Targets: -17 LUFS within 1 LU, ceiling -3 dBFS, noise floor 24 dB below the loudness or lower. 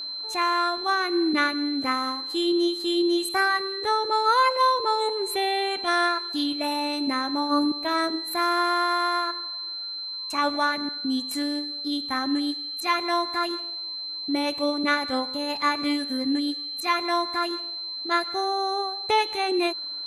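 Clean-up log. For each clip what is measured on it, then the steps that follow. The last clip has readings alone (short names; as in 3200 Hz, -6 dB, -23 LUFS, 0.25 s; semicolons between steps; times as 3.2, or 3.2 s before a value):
steady tone 4100 Hz; tone level -31 dBFS; loudness -25.0 LUFS; peak -10.0 dBFS; loudness target -17.0 LUFS
-> notch 4100 Hz, Q 30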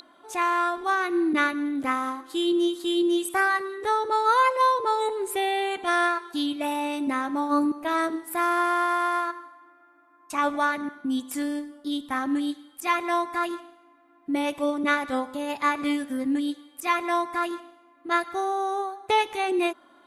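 steady tone none; loudness -26.0 LUFS; peak -10.5 dBFS; loudness target -17.0 LUFS
-> gain +9 dB; limiter -3 dBFS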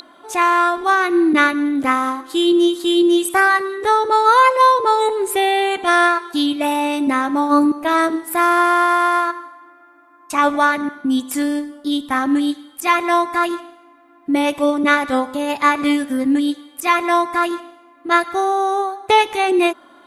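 loudness -17.0 LUFS; peak -3.0 dBFS; noise floor -48 dBFS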